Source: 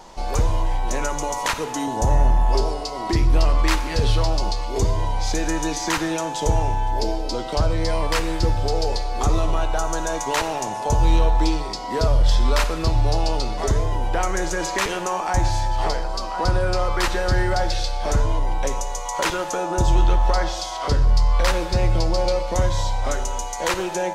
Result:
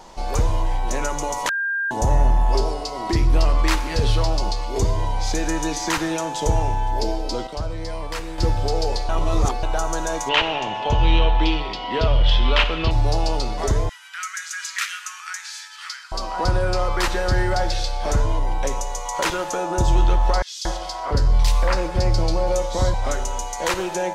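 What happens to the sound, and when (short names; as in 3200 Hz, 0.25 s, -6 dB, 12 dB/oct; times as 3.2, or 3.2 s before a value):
1.49–1.91 bleep 1600 Hz -20.5 dBFS
7.47–8.38 gain -7.5 dB
9.09–9.63 reverse
10.29–12.91 synth low-pass 3000 Hz, resonance Q 5
13.89–16.12 Chebyshev high-pass 1300 Hz, order 5
20.42–22.94 bands offset in time highs, lows 0.23 s, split 2600 Hz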